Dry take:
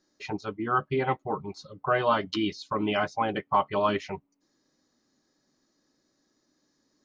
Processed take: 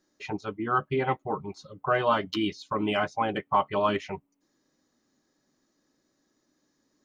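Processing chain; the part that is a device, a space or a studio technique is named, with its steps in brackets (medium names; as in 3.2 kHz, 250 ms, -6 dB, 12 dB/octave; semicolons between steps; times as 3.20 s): exciter from parts (in parallel at -7 dB: high-pass 2.9 kHz 12 dB/octave + saturation -31 dBFS, distortion -15 dB + high-pass 3.4 kHz 24 dB/octave)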